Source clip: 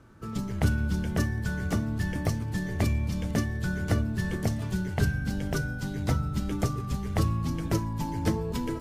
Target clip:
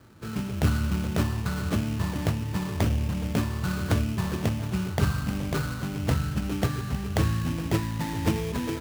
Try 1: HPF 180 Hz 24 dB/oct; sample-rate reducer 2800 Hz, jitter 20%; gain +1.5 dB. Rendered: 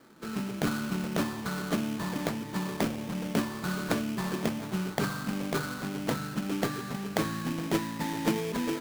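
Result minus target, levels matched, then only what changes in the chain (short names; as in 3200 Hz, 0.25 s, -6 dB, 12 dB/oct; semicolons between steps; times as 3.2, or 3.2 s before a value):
125 Hz band -6.5 dB
change: HPF 53 Hz 24 dB/oct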